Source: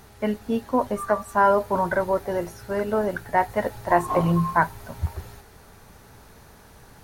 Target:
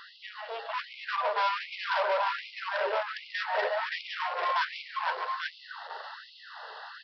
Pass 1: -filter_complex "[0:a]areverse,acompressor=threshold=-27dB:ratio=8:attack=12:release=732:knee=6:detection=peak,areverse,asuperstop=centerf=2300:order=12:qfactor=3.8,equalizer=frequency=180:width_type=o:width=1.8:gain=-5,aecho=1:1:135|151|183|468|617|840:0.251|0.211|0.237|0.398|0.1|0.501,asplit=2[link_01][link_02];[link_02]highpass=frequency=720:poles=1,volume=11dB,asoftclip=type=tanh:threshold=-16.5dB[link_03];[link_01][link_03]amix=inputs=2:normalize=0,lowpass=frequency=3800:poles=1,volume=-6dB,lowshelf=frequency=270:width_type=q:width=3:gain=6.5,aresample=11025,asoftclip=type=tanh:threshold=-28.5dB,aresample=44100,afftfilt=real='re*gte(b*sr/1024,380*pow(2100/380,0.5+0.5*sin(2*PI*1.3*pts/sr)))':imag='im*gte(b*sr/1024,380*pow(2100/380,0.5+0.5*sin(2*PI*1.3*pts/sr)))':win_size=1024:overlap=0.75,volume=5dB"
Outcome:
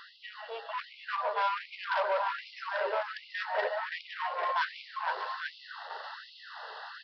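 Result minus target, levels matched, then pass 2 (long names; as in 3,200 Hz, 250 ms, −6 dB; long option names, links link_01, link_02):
downward compressor: peak gain reduction +7 dB
-filter_complex "[0:a]areverse,acompressor=threshold=-19dB:ratio=8:attack=12:release=732:knee=6:detection=peak,areverse,asuperstop=centerf=2300:order=12:qfactor=3.8,equalizer=frequency=180:width_type=o:width=1.8:gain=-5,aecho=1:1:135|151|183|468|617|840:0.251|0.211|0.237|0.398|0.1|0.501,asplit=2[link_01][link_02];[link_02]highpass=frequency=720:poles=1,volume=11dB,asoftclip=type=tanh:threshold=-16.5dB[link_03];[link_01][link_03]amix=inputs=2:normalize=0,lowpass=frequency=3800:poles=1,volume=-6dB,lowshelf=frequency=270:width_type=q:width=3:gain=6.5,aresample=11025,asoftclip=type=tanh:threshold=-28.5dB,aresample=44100,afftfilt=real='re*gte(b*sr/1024,380*pow(2100/380,0.5+0.5*sin(2*PI*1.3*pts/sr)))':imag='im*gte(b*sr/1024,380*pow(2100/380,0.5+0.5*sin(2*PI*1.3*pts/sr)))':win_size=1024:overlap=0.75,volume=5dB"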